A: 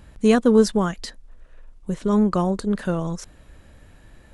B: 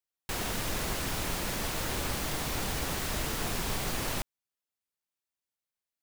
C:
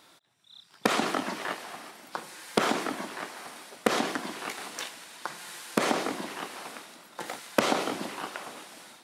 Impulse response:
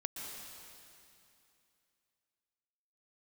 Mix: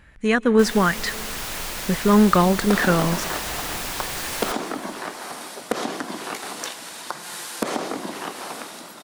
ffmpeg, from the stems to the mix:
-filter_complex "[0:a]equalizer=f=1.9k:w=1.2:g=14,volume=-7dB,asplit=2[a][b];[b]volume=-19dB[c];[1:a]lowshelf=f=490:g=-10.5,adelay=300,volume=-6dB,asplit=2[d][e];[e]volume=-16.5dB[f];[2:a]equalizer=f=2.3k:w=0.96:g=-4.5,acompressor=threshold=-44dB:ratio=2,adelay=1850,volume=2dB[g];[3:a]atrim=start_sample=2205[h];[c][f]amix=inputs=2:normalize=0[i];[i][h]afir=irnorm=-1:irlink=0[j];[a][d][g][j]amix=inputs=4:normalize=0,dynaudnorm=f=130:g=9:m=10.5dB"

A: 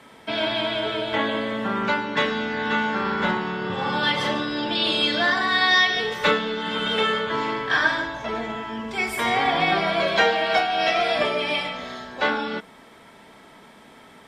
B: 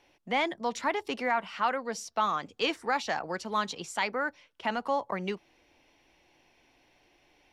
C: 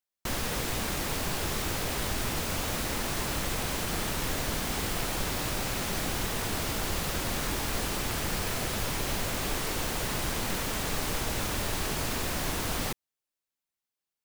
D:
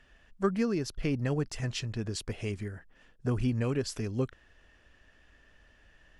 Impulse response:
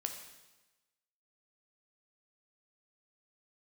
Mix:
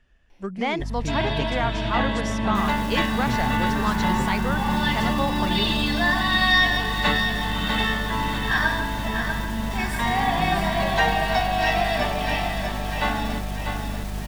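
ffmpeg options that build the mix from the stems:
-filter_complex "[0:a]aecho=1:1:1.1:0.6,aeval=exprs='val(0)+0.0282*(sin(2*PI*50*n/s)+sin(2*PI*2*50*n/s)/2+sin(2*PI*3*50*n/s)/3+sin(2*PI*4*50*n/s)/4+sin(2*PI*5*50*n/s)/5)':c=same,adelay=800,volume=-4dB,asplit=2[a][b];[b]volume=-7dB[c];[1:a]adelay=300,volume=1dB[d];[2:a]alimiter=level_in=10dB:limit=-24dB:level=0:latency=1,volume=-10dB,adelay=2300,volume=2.5dB[e];[3:a]volume=-6.5dB[f];[c]aecho=0:1:645|1290|1935|2580|3225|3870|4515|5160:1|0.54|0.292|0.157|0.085|0.0459|0.0248|0.0134[g];[a][d][e][f][g]amix=inputs=5:normalize=0,lowshelf=f=220:g=8"

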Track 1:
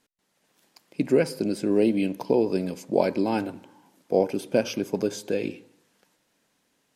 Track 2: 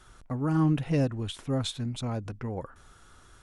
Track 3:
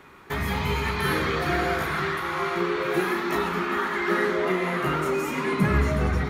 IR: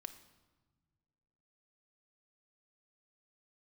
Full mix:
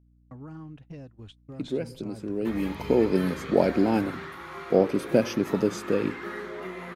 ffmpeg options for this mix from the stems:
-filter_complex "[0:a]lowshelf=f=450:g=8,adelay=600,volume=-3dB,afade=t=in:st=1.37:d=0.21:silence=0.354813,afade=t=in:st=2.43:d=0.68:silence=0.281838[a];[1:a]acompressor=threshold=-28dB:ratio=20,lowpass=6.1k,volume=-10dB[b];[2:a]adelay=2150,volume=-12.5dB[c];[a][b][c]amix=inputs=3:normalize=0,agate=range=-39dB:threshold=-45dB:ratio=16:detection=peak,aeval=exprs='val(0)+0.00112*(sin(2*PI*60*n/s)+sin(2*PI*2*60*n/s)/2+sin(2*PI*3*60*n/s)/3+sin(2*PI*4*60*n/s)/4+sin(2*PI*5*60*n/s)/5)':c=same"

